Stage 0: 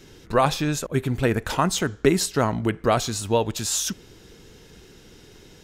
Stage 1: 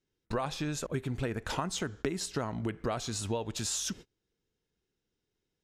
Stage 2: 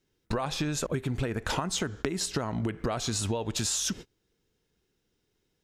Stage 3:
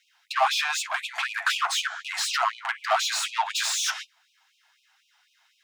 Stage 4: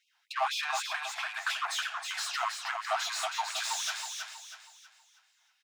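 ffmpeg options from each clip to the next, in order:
-af "agate=range=0.0224:threshold=0.0126:ratio=16:detection=peak,acompressor=threshold=0.0447:ratio=6,lowpass=10000,volume=0.708"
-af "acompressor=threshold=0.02:ratio=6,volume=2.51"
-filter_complex "[0:a]flanger=delay=8.2:depth=2.6:regen=-37:speed=0.38:shape=triangular,asplit=2[s0][s1];[s1]highpass=f=720:p=1,volume=35.5,asoftclip=type=tanh:threshold=0.251[s2];[s0][s2]amix=inputs=2:normalize=0,lowpass=f=1400:p=1,volume=0.501,afftfilt=real='re*gte(b*sr/1024,620*pow(2400/620,0.5+0.5*sin(2*PI*4*pts/sr)))':imag='im*gte(b*sr/1024,620*pow(2400/620,0.5+0.5*sin(2*PI*4*pts/sr)))':win_size=1024:overlap=0.75,volume=1.58"
-af "aecho=1:1:321|642|963|1284|1605:0.562|0.214|0.0812|0.0309|0.0117,volume=0.398"

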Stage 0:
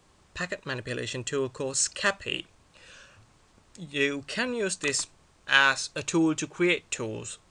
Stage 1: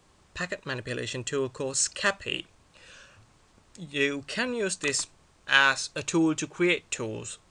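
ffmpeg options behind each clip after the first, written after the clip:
-af anull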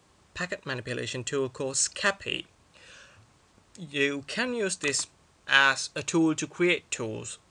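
-af "highpass=51"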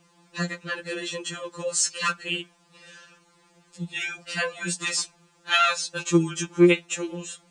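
-af "afftfilt=real='re*2.83*eq(mod(b,8),0)':imag='im*2.83*eq(mod(b,8),0)':win_size=2048:overlap=0.75,volume=1.68"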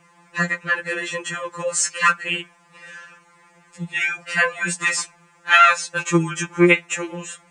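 -af "equalizer=f=125:t=o:w=1:g=8,equalizer=f=250:t=o:w=1:g=-4,equalizer=f=500:t=o:w=1:g=3,equalizer=f=1000:t=o:w=1:g=7,equalizer=f=2000:t=o:w=1:g=12,equalizer=f=4000:t=o:w=1:g=-6,equalizer=f=8000:t=o:w=1:g=4"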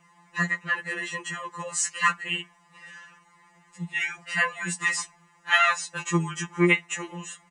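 -af "aecho=1:1:4.8:0.58,volume=0.473"

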